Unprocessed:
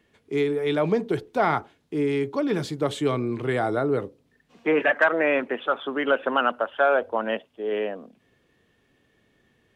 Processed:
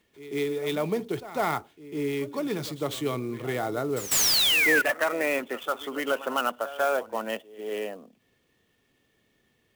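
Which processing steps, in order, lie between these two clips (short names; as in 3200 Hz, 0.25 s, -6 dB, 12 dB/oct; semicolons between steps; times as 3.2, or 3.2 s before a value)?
high shelf 3600 Hz +10.5 dB; notch 1600 Hz, Q 11; painted sound fall, 4.11–4.82, 1400–8100 Hz -16 dBFS; on a send: reverse echo 0.15 s -15.5 dB; on the sum: clock jitter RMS 0.02 ms; gain -5.5 dB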